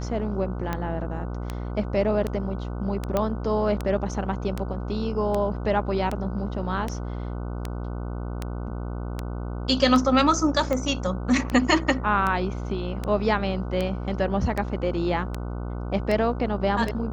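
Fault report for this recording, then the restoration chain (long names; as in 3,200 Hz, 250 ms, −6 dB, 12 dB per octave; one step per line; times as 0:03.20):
mains buzz 60 Hz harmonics 25 −31 dBFS
scratch tick 78 rpm −14 dBFS
0:03.17: click −11 dBFS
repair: click removal
hum removal 60 Hz, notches 25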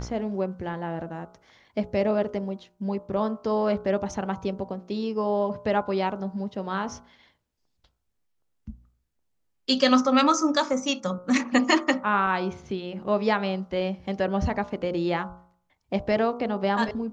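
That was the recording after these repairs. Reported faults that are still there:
none of them is left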